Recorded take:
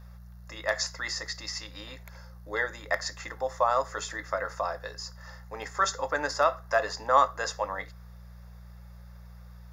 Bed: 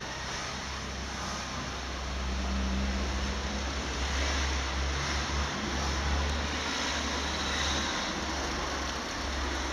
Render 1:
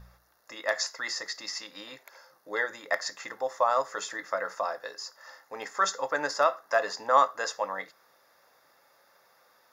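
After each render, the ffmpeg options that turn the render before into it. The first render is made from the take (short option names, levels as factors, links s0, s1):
-af "bandreject=f=60:t=h:w=4,bandreject=f=120:t=h:w=4,bandreject=f=180:t=h:w=4"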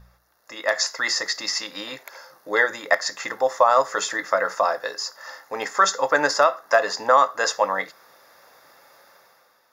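-af "alimiter=limit=0.178:level=0:latency=1:release=312,dynaudnorm=f=130:g=9:m=3.35"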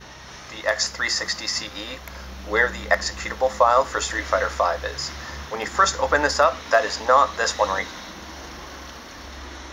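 -filter_complex "[1:a]volume=0.562[s0];[0:a][s0]amix=inputs=2:normalize=0"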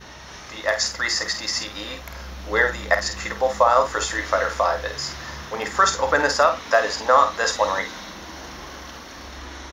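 -filter_complex "[0:a]asplit=2[s0][s1];[s1]adelay=49,volume=0.398[s2];[s0][s2]amix=inputs=2:normalize=0"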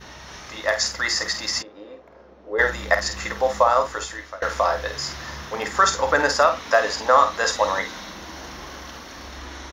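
-filter_complex "[0:a]asplit=3[s0][s1][s2];[s0]afade=t=out:st=1.61:d=0.02[s3];[s1]bandpass=f=440:t=q:w=2,afade=t=in:st=1.61:d=0.02,afade=t=out:st=2.58:d=0.02[s4];[s2]afade=t=in:st=2.58:d=0.02[s5];[s3][s4][s5]amix=inputs=3:normalize=0,asplit=2[s6][s7];[s6]atrim=end=4.42,asetpts=PTS-STARTPTS,afade=t=out:st=3.58:d=0.84:silence=0.0891251[s8];[s7]atrim=start=4.42,asetpts=PTS-STARTPTS,afade=t=in:d=0.004:c=hsin:silence=0.0891251[s9];[s8][s9]concat=n=2:v=0:a=1"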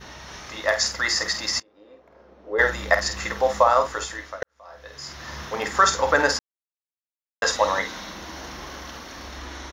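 -filter_complex "[0:a]asplit=5[s0][s1][s2][s3][s4];[s0]atrim=end=1.6,asetpts=PTS-STARTPTS,afade=t=out:st=1.596:d=0.004:c=hsin:silence=0.0944061[s5];[s1]atrim=start=1.6:end=4.43,asetpts=PTS-STARTPTS,afade=t=in:d=0.95:silence=0.0944061,afade=t=out:st=2.826:d=0.004:c=hsin[s6];[s2]atrim=start=4.43:end=6.39,asetpts=PTS-STARTPTS,afade=t=in:d=0.98:c=qua,afade=t=out:st=1.956:d=0.004:c=hsin[s7];[s3]atrim=start=6.39:end=7.42,asetpts=PTS-STARTPTS,volume=0[s8];[s4]atrim=start=7.42,asetpts=PTS-STARTPTS,afade=t=in:d=0.004:c=hsin[s9];[s5][s6][s7][s8][s9]concat=n=5:v=0:a=1"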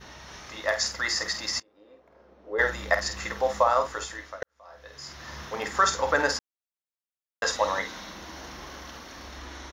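-af "volume=0.596"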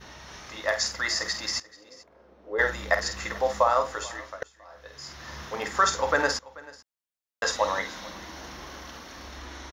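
-af "aecho=1:1:436:0.0891"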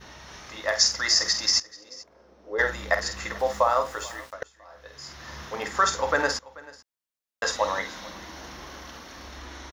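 -filter_complex "[0:a]asettb=1/sr,asplit=3[s0][s1][s2];[s0]atrim=end=0.754[s3];[s1]atrim=start=0.75:end=2.62,asetpts=PTS-STARTPTS,afade=t=in:d=0.004:c=qsin,afade=t=out:st=1.866:d=0.004:c=qsin,equalizer=f=5600:t=o:w=0.62:g=10.5[s4];[s2]atrim=start=2.616[s5];[s3][s4]acrossfade=d=0.004:c1=hsin:c2=qsin[s6];[s6][s5]acrossfade=d=0.004:c1=qsin:c2=hsin,asettb=1/sr,asplit=3[s7][s8][s9];[s7]atrim=end=3.394[s10];[s8]atrim=start=3.39:end=4.33,asetpts=PTS-STARTPTS,afade=t=in:d=0.004:c=qsin,afade=t=out:st=0.936:d=0.004:c=qsin,aeval=exprs='val(0)*gte(abs(val(0)),0.00596)':c=same[s11];[s9]atrim=start=4.326[s12];[s10][s11]acrossfade=d=0.004:c1=hsin:c2=qsin[s13];[s13][s12]acrossfade=d=0.004:c1=qsin:c2=hsin"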